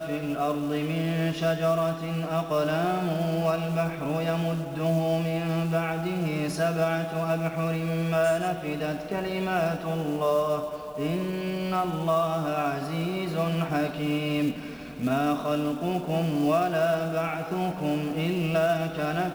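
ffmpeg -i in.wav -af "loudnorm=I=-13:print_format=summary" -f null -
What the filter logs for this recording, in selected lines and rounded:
Input Integrated:    -27.2 LUFS
Input True Peak:     -12.8 dBTP
Input LRA:             1.4 LU
Input Threshold:     -37.2 LUFS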